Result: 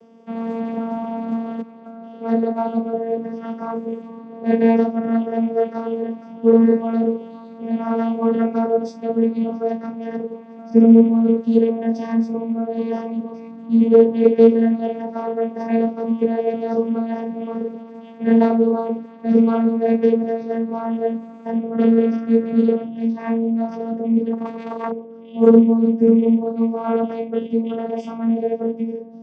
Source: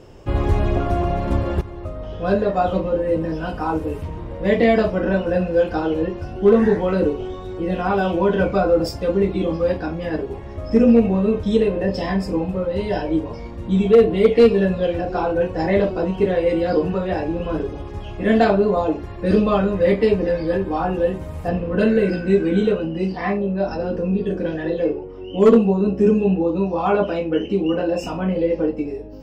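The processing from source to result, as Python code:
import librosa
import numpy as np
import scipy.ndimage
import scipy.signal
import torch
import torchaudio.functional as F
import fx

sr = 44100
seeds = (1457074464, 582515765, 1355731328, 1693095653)

y = fx.self_delay(x, sr, depth_ms=0.9, at=(24.32, 24.91))
y = fx.vocoder(y, sr, bands=16, carrier='saw', carrier_hz=228.0)
y = F.gain(torch.from_numpy(y), 1.5).numpy()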